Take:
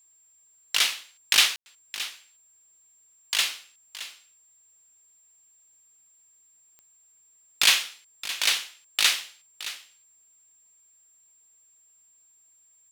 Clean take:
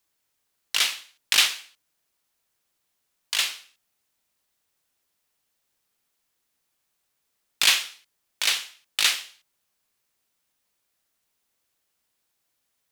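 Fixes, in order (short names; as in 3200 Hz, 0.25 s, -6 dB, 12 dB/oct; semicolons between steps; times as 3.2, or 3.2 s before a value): de-click; notch 7400 Hz, Q 30; room tone fill 1.56–1.66; inverse comb 0.619 s -14 dB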